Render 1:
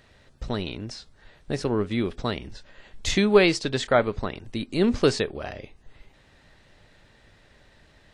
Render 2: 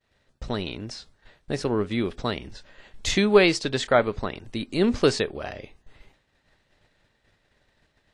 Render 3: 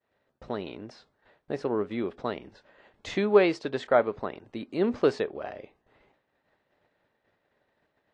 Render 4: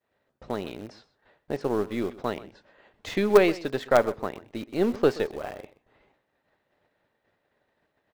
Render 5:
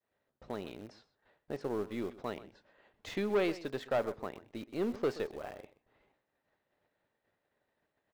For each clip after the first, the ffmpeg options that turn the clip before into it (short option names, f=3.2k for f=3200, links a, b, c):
-af "agate=range=-33dB:threshold=-47dB:ratio=3:detection=peak,lowshelf=f=210:g=-3,volume=1dB"
-af "bandpass=f=620:t=q:w=0.59:csg=0,volume=-1.5dB"
-filter_complex "[0:a]asplit=2[a][b];[b]acrusher=bits=3:dc=4:mix=0:aa=0.000001,volume=-9dB[c];[a][c]amix=inputs=2:normalize=0,aecho=1:1:126:0.119"
-af "asoftclip=type=tanh:threshold=-15.5dB,volume=-8dB"